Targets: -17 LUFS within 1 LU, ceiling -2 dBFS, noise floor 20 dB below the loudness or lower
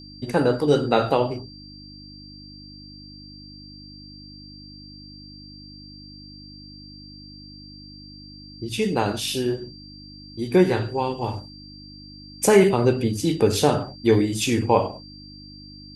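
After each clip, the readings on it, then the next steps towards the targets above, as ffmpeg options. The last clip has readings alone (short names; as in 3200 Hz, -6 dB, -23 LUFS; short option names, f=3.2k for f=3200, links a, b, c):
hum 50 Hz; harmonics up to 300 Hz; hum level -43 dBFS; steady tone 4700 Hz; tone level -44 dBFS; loudness -21.5 LUFS; peak -3.5 dBFS; loudness target -17.0 LUFS
-> -af "bandreject=f=50:t=h:w=4,bandreject=f=100:t=h:w=4,bandreject=f=150:t=h:w=4,bandreject=f=200:t=h:w=4,bandreject=f=250:t=h:w=4,bandreject=f=300:t=h:w=4"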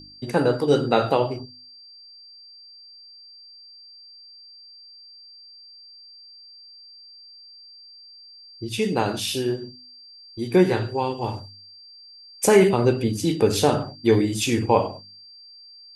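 hum none; steady tone 4700 Hz; tone level -44 dBFS
-> -af "bandreject=f=4.7k:w=30"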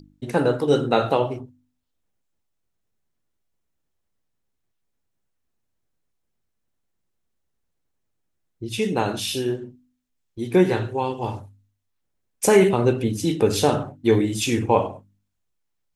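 steady tone none; loudness -22.0 LUFS; peak -4.0 dBFS; loudness target -17.0 LUFS
-> -af "volume=5dB,alimiter=limit=-2dB:level=0:latency=1"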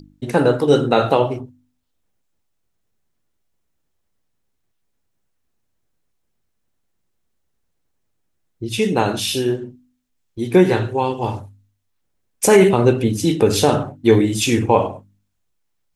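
loudness -17.5 LUFS; peak -2.0 dBFS; noise floor -70 dBFS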